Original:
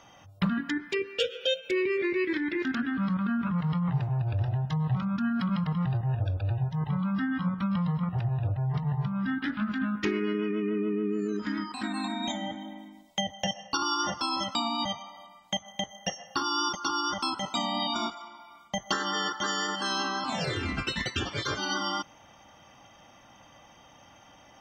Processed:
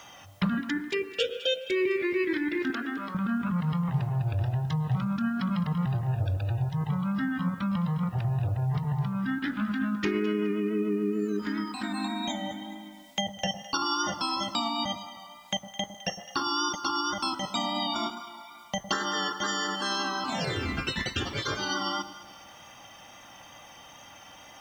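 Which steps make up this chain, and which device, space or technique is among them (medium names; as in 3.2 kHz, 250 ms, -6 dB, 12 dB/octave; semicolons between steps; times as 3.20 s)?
2.70–3.15 s: resonant low shelf 250 Hz -12 dB, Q 3; echo whose repeats swap between lows and highs 105 ms, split 970 Hz, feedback 54%, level -10.5 dB; noise-reduction cassette on a plain deck (tape noise reduction on one side only encoder only; wow and flutter 18 cents; white noise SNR 36 dB)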